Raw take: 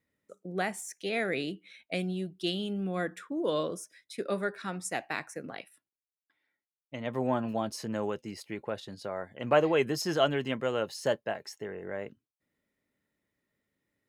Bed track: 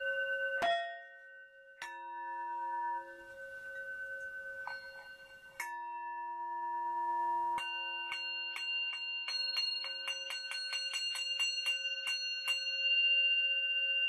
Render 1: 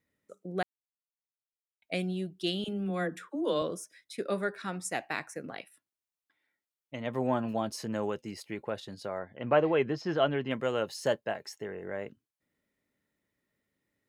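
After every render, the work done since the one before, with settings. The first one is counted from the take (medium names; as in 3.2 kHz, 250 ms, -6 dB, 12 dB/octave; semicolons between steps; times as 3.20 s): 0.63–1.82 s: mute; 2.64–3.62 s: phase dispersion lows, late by 44 ms, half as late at 470 Hz; 9.19–10.51 s: distance through air 240 m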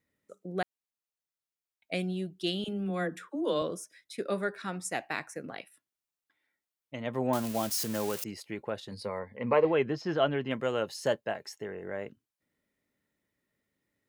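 7.33–8.24 s: zero-crossing glitches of -26.5 dBFS; 8.91–9.65 s: rippled EQ curve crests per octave 0.91, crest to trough 12 dB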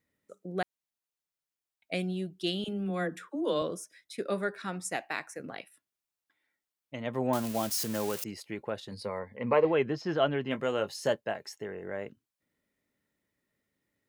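4.96–5.40 s: high-pass 310 Hz 6 dB/octave; 10.44–11.10 s: doubling 20 ms -10.5 dB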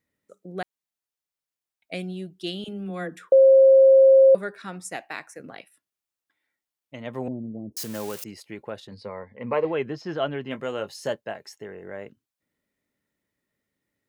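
3.32–4.35 s: bleep 535 Hz -10 dBFS; 7.28–7.77 s: inverse Chebyshev low-pass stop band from 1.4 kHz, stop band 60 dB; 8.87–9.53 s: distance through air 110 m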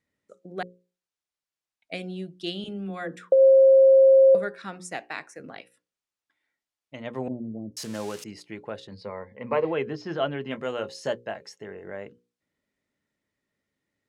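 low-pass 7.8 kHz 12 dB/octave; hum notches 60/120/180/240/300/360/420/480/540 Hz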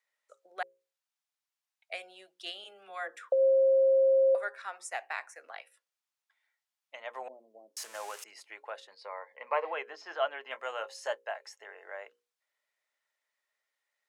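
high-pass 670 Hz 24 dB/octave; dynamic bell 4.1 kHz, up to -7 dB, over -54 dBFS, Q 1.1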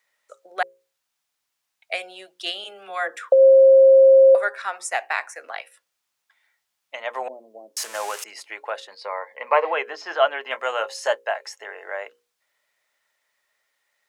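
trim +12 dB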